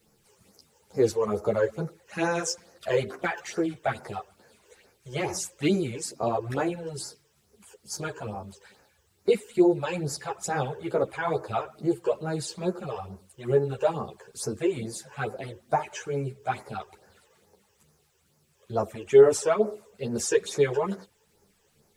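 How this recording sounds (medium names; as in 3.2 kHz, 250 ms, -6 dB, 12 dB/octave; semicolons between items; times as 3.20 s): phasing stages 12, 2.3 Hz, lowest notch 210–3400 Hz; a quantiser's noise floor 12-bit, dither none; a shimmering, thickened sound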